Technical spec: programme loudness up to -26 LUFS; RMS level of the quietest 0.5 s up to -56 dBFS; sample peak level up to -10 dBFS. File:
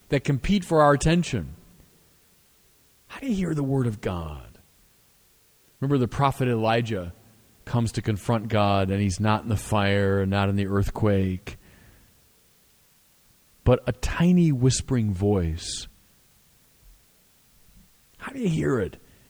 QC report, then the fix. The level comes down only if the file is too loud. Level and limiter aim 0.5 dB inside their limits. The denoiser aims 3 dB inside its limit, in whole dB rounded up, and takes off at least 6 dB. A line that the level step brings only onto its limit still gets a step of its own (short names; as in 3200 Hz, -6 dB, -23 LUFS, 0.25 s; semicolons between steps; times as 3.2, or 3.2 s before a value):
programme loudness -24.0 LUFS: fail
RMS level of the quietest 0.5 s -60 dBFS: OK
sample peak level -6.5 dBFS: fail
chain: gain -2.5 dB; limiter -10.5 dBFS